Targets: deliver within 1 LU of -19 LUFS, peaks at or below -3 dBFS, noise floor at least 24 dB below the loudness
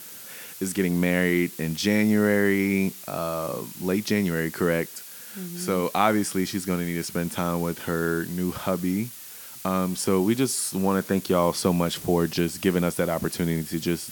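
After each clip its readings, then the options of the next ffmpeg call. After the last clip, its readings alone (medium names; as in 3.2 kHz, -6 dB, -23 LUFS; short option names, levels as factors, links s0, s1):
noise floor -42 dBFS; noise floor target -49 dBFS; loudness -25.0 LUFS; peak level -5.5 dBFS; loudness target -19.0 LUFS
-> -af "afftdn=nr=7:nf=-42"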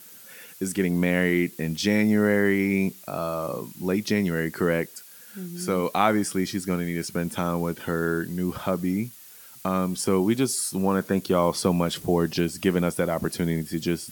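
noise floor -47 dBFS; noise floor target -49 dBFS
-> -af "afftdn=nr=6:nf=-47"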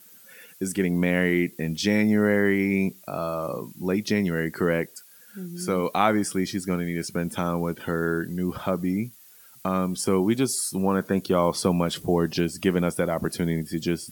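noise floor -51 dBFS; loudness -25.0 LUFS; peak level -5.5 dBFS; loudness target -19.0 LUFS
-> -af "volume=2,alimiter=limit=0.708:level=0:latency=1"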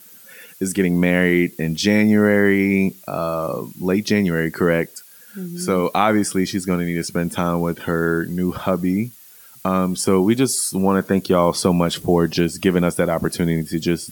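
loudness -19.5 LUFS; peak level -3.0 dBFS; noise floor -45 dBFS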